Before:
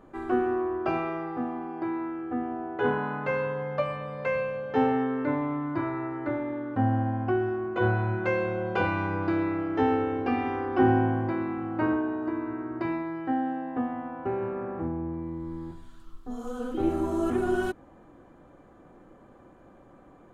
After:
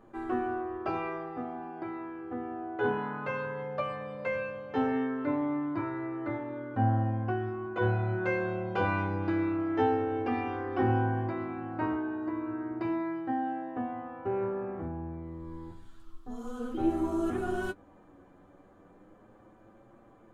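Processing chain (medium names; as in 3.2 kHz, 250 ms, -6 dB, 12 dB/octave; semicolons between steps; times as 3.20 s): flange 0.3 Hz, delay 8.7 ms, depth 2.2 ms, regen +32%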